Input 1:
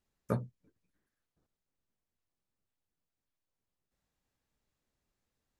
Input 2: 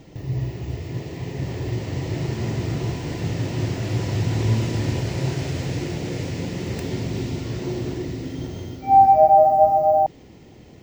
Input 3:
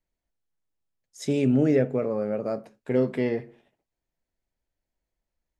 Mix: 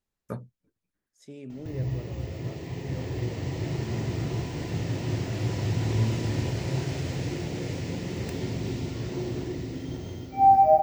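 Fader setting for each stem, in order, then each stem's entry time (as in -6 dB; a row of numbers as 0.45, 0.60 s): -3.0, -4.5, -19.0 dB; 0.00, 1.50, 0.00 s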